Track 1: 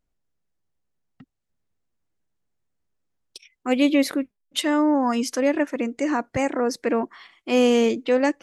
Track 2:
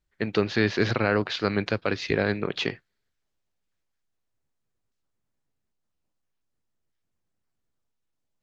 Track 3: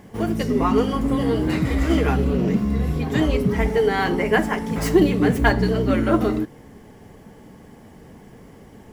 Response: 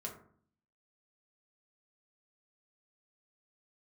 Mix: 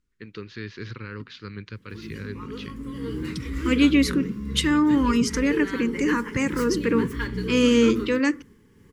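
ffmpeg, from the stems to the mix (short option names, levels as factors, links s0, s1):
-filter_complex "[0:a]lowpass=9700,volume=1.06,asplit=2[s0][s1];[s1]volume=0.316[s2];[1:a]asubboost=boost=5:cutoff=170,volume=0.237,asplit=2[s3][s4];[2:a]tremolo=f=2.1:d=0.3,adelay=1750,volume=0.398[s5];[s4]apad=whole_len=470835[s6];[s5][s6]sidechaincompress=threshold=0.01:ratio=4:attack=16:release=477[s7];[3:a]atrim=start_sample=2205[s8];[s2][s8]afir=irnorm=-1:irlink=0[s9];[s0][s3][s7][s9]amix=inputs=4:normalize=0,asuperstop=centerf=690:order=4:qfactor=1.2"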